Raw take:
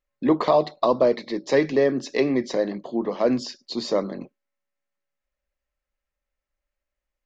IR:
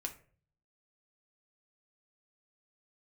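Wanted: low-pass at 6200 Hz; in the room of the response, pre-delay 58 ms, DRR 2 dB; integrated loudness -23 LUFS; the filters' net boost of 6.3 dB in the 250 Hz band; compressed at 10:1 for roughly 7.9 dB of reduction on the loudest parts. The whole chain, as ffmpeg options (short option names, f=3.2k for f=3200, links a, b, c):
-filter_complex "[0:a]lowpass=6.2k,equalizer=f=250:t=o:g=7.5,acompressor=threshold=-17dB:ratio=10,asplit=2[a][b];[1:a]atrim=start_sample=2205,adelay=58[c];[b][c]afir=irnorm=-1:irlink=0,volume=-1dB[d];[a][d]amix=inputs=2:normalize=0,volume=-1dB"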